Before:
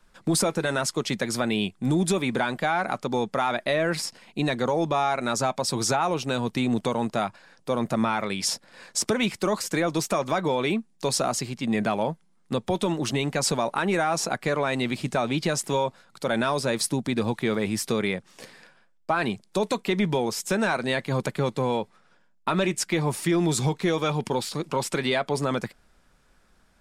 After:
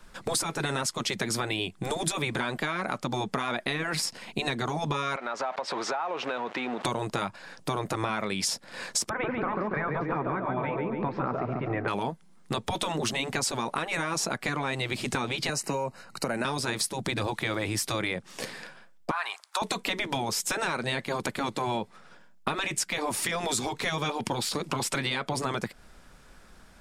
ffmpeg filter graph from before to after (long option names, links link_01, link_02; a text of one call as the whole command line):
ffmpeg -i in.wav -filter_complex "[0:a]asettb=1/sr,asplit=3[link_01][link_02][link_03];[link_01]atrim=end=5.164[link_04];[link_02]atrim=start=5.16:end=6.85,asetpts=PTS-STARTPTS,afade=type=in:duration=0.004:curve=qsin,afade=type=out:start_time=1.686:duration=0.004:curve=qsin,aeval=exprs='val(0)+0.5*0.0224*sgn(val(0))':channel_layout=same,highpass=600,lowpass=2100,acompressor=threshold=-36dB:ratio=3:attack=3.2:release=140:knee=1:detection=peak[link_05];[link_03]atrim=start=6.846[link_06];[link_04][link_05]acrossfade=duration=0.004:curve1=hsin:curve2=qsin[link_07];[link_07][link_06]acrossfade=duration=0.004:curve1=qsin:curve2=hsin,asettb=1/sr,asplit=3[link_08][link_09][link_10];[link_08]atrim=end=9.094[link_11];[link_09]atrim=start=9.09:end=11.88,asetpts=PTS-STARTPTS,afade=type=in:duration=0.004:curve=qsin,afade=type=out:start_time=2.786:duration=0.004:curve=qsin,lowpass=frequency=1800:width=0.5412,lowpass=frequency=1800:width=1.3066,aecho=1:1:141|282|423|564|705|846:0.447|0.21|0.0987|0.0464|0.0218|0.0102,atrim=end_sample=123039[link_12];[link_10]atrim=start=11.876[link_13];[link_11][link_12]acrossfade=duration=0.004:curve1=hsin:curve2=qsin[link_14];[link_14][link_13]acrossfade=duration=0.004:curve1=qsin:curve2=hsin,asettb=1/sr,asplit=3[link_15][link_16][link_17];[link_15]atrim=end=15.494[link_18];[link_16]atrim=start=15.49:end=16.45,asetpts=PTS-STARTPTS,afade=type=in:duration=0.004:curve=qsin,afade=type=out:start_time=0.956:duration=0.004:curve=qsin,asuperstop=centerf=3400:order=12:qfactor=4.9,acrossover=split=230|6900[link_19][link_20][link_21];[link_19]acompressor=threshold=-41dB:ratio=4[link_22];[link_20]acompressor=threshold=-30dB:ratio=4[link_23];[link_21]acompressor=threshold=-40dB:ratio=4[link_24];[link_22][link_23][link_24]amix=inputs=3:normalize=0[link_25];[link_17]atrim=start=16.446[link_26];[link_18][link_25]acrossfade=duration=0.004:curve1=hsin:curve2=qsin[link_27];[link_27][link_26]acrossfade=duration=0.004:curve1=qsin:curve2=hsin,asettb=1/sr,asplit=3[link_28][link_29][link_30];[link_28]atrim=end=19.114[link_31];[link_29]atrim=start=19.11:end=19.62,asetpts=PTS-STARTPTS,afade=type=in:duration=0.004:curve=qsin,afade=type=out:start_time=0.506:duration=0.004:curve=qsin,highpass=frequency=810:width=0.5412,highpass=frequency=810:width=1.3066,acompressor=threshold=-37dB:ratio=2:attack=3.2:release=140:knee=1:detection=peak,equalizer=frequency=1200:width_type=o:width=1.1:gain=11[link_32];[link_30]atrim=start=19.616[link_33];[link_31][link_32]acrossfade=duration=0.004:curve1=hsin:curve2=qsin[link_34];[link_34][link_33]acrossfade=duration=0.004:curve1=qsin:curve2=hsin,afftfilt=real='re*lt(hypot(re,im),0.282)':imag='im*lt(hypot(re,im),0.282)':win_size=1024:overlap=0.75,acompressor=threshold=-35dB:ratio=6,volume=8.5dB" out.wav